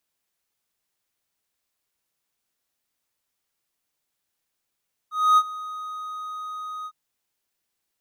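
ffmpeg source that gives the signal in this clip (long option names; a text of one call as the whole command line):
ffmpeg -f lavfi -i "aevalsrc='0.316*(1-4*abs(mod(1250*t+0.25,1)-0.5))':duration=1.805:sample_rate=44100,afade=type=in:duration=0.263,afade=type=out:start_time=0.263:duration=0.052:silence=0.112,afade=type=out:start_time=1.75:duration=0.055" out.wav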